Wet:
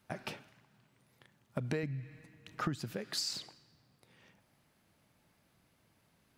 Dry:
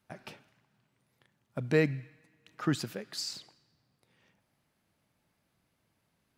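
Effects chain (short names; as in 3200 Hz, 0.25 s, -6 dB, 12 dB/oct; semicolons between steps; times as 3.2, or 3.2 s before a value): 1.83–2.97 low shelf 140 Hz +12 dB; compressor 20:1, threshold -37 dBFS, peak gain reduction 18.5 dB; gain +5 dB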